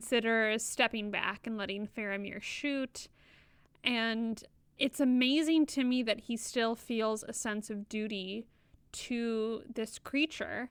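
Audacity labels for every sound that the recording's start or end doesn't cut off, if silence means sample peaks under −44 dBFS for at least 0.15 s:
3.840000	4.450000	sound
4.790000	8.420000	sound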